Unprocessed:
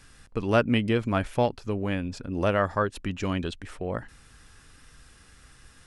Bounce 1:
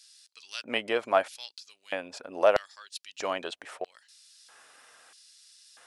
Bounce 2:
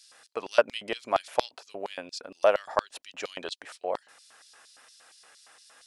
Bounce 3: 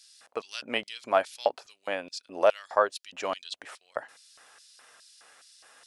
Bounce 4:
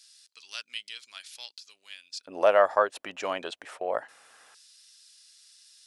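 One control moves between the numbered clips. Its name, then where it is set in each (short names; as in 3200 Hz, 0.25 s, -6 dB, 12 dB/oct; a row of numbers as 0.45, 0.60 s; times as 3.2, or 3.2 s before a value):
LFO high-pass, rate: 0.78, 4.3, 2.4, 0.22 Hz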